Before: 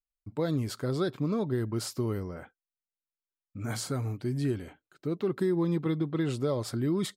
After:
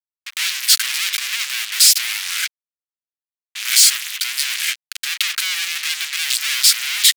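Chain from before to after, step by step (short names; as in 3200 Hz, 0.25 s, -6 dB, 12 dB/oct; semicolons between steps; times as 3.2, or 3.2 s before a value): fuzz box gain 58 dB, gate -52 dBFS; inverse Chebyshev high-pass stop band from 360 Hz, stop band 80 dB; gain +5.5 dB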